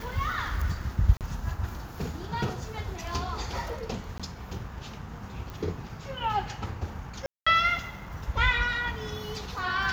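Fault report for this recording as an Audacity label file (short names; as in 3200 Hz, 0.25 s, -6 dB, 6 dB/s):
1.170000	1.210000	gap 38 ms
4.180000	4.200000	gap 16 ms
5.500000	5.500000	pop
7.260000	7.460000	gap 0.205 s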